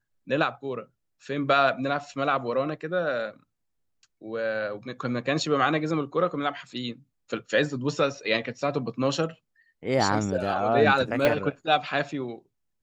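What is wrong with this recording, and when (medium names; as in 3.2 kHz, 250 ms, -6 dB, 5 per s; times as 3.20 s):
11.25 s: pop -9 dBFS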